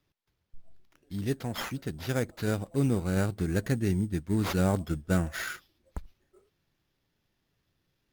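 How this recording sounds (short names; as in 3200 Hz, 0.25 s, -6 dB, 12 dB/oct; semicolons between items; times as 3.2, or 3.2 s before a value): aliases and images of a low sample rate 8500 Hz, jitter 0%; MP3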